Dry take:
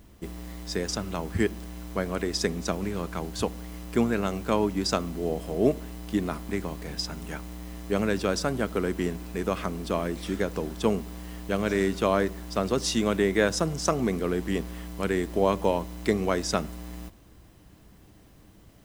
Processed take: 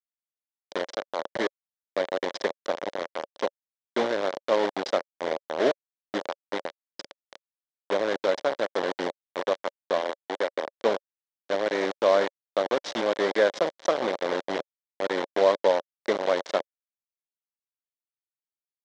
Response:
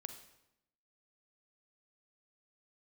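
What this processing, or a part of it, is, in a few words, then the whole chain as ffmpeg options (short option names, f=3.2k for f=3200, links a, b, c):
hand-held game console: -filter_complex "[0:a]acrusher=bits=3:mix=0:aa=0.000001,highpass=400,equalizer=f=560:t=q:w=4:g=9,equalizer=f=1.3k:t=q:w=4:g=-4,equalizer=f=2.6k:t=q:w=4:g=-9,equalizer=f=4.7k:t=q:w=4:g=-5,lowpass=f=4.7k:w=0.5412,lowpass=f=4.7k:w=1.3066,asettb=1/sr,asplit=3[a][b][c];[a]atrim=end=10.014[d];[b]atrim=start=10.01:end=10.67,asetpts=PTS-STARTPTS,afade=t=in:d=0.004:c=qsin,afade=t=out:st=0.656:d=0.004:c=qsin,highpass=270[e];[c]atrim=start=10.666[f];[d][e]acrossfade=d=0.004:c1=hsin:c2=qsin[g];[g][f]acrossfade=d=0.004:c1=qsin:c2=hsin"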